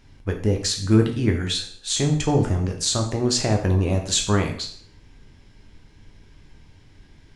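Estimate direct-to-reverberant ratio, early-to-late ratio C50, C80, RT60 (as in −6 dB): 2.5 dB, 8.0 dB, 12.0 dB, 0.55 s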